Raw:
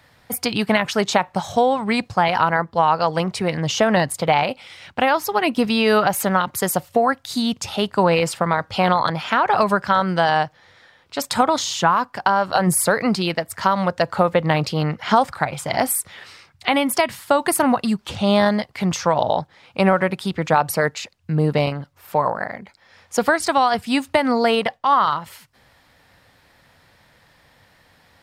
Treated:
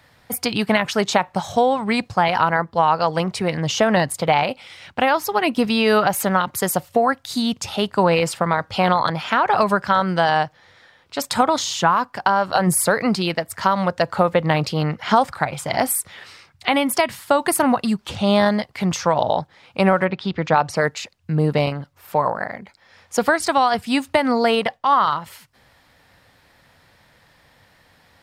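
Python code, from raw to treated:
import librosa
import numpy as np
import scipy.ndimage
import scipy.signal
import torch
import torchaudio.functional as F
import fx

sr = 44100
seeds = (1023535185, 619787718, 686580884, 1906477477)

y = fx.lowpass(x, sr, hz=fx.line((20.04, 4100.0), (20.75, 7500.0)), slope=24, at=(20.04, 20.75), fade=0.02)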